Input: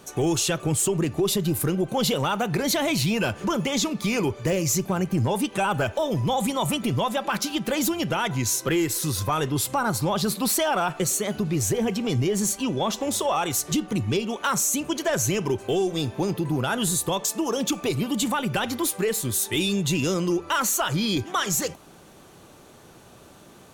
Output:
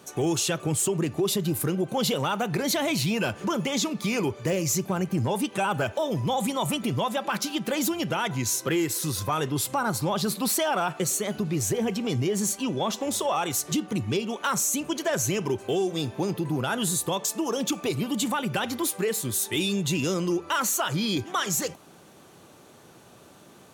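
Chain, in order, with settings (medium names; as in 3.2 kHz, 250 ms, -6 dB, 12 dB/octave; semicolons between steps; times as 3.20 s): high-pass 96 Hz; trim -2 dB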